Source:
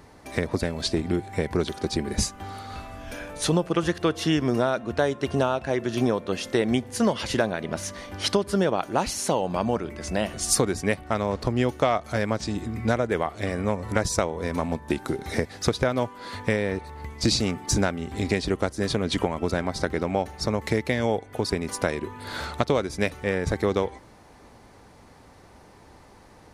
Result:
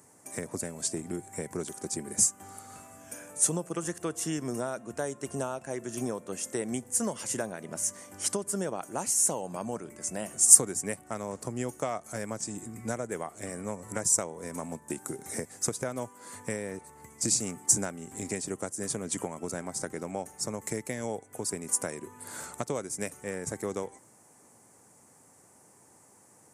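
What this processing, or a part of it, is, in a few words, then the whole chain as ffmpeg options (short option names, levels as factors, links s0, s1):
budget condenser microphone: -af "highpass=f=110:w=0.5412,highpass=f=110:w=1.3066,highshelf=f=5600:t=q:w=3:g=13,volume=0.316"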